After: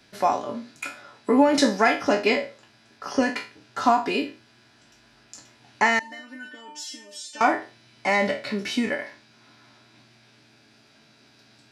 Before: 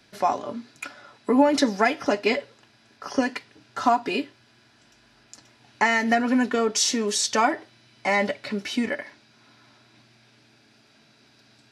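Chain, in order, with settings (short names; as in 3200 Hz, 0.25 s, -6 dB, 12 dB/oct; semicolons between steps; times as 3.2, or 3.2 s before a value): spectral trails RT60 0.34 s; 5.99–7.41 resonator 300 Hz, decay 0.33 s, harmonics all, mix 100%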